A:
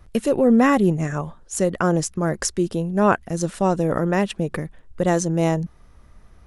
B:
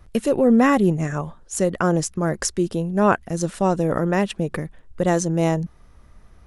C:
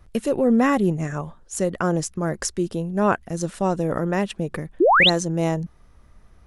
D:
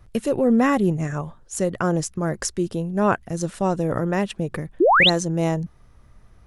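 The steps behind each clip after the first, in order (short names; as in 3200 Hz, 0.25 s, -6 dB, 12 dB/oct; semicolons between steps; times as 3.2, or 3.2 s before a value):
nothing audible
painted sound rise, 4.8–5.1, 300–4400 Hz -12 dBFS; gain -2.5 dB
bell 120 Hz +8 dB 0.31 oct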